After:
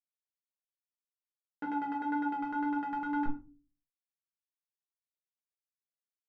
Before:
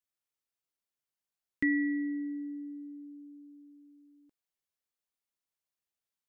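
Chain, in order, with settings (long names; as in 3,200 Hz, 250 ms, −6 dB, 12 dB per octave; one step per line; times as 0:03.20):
gate on every frequency bin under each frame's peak −15 dB strong
drawn EQ curve 160 Hz 0 dB, 1,400 Hz −4 dB, 2,300 Hz −29 dB
pitch vibrato 2 Hz 24 cents
comparator with hysteresis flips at −47.5 dBFS
auto-filter low-pass saw down 9.9 Hz 490–1,600 Hz
flanger 1.7 Hz, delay 5.7 ms, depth 1.6 ms, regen −31%
rectangular room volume 150 cubic metres, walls furnished, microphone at 1.4 metres
level +9 dB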